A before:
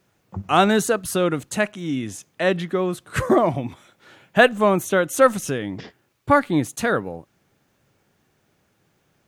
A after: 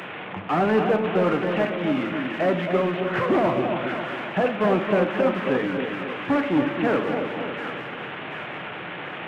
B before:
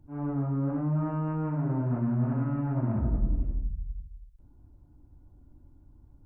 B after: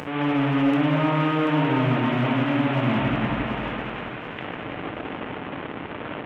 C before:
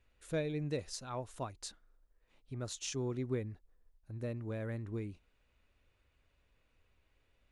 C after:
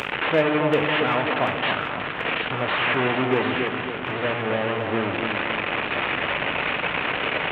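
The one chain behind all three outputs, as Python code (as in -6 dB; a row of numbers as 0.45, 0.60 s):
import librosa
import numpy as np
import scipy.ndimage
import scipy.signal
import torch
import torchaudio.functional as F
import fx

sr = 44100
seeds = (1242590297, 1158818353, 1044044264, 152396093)

p1 = fx.delta_mod(x, sr, bps=16000, step_db=-32.0)
p2 = scipy.signal.sosfilt(scipy.signal.butter(2, 170.0, 'highpass', fs=sr, output='sos'), p1)
p3 = fx.room_shoebox(p2, sr, seeds[0], volume_m3=340.0, walls='mixed', distance_m=0.45)
p4 = np.clip(10.0 ** (26.0 / 20.0) * p3, -1.0, 1.0) / 10.0 ** (26.0 / 20.0)
p5 = p3 + F.gain(torch.from_numpy(p4), -4.0).numpy()
p6 = fx.low_shelf(p5, sr, hz=320.0, db=-7.0)
p7 = p6 + fx.echo_split(p6, sr, split_hz=1200.0, low_ms=272, high_ms=736, feedback_pct=52, wet_db=-5.5, dry=0)
y = p7 * 10.0 ** (-24 / 20.0) / np.sqrt(np.mean(np.square(p7)))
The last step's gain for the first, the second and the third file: +0.5, +8.0, +12.5 dB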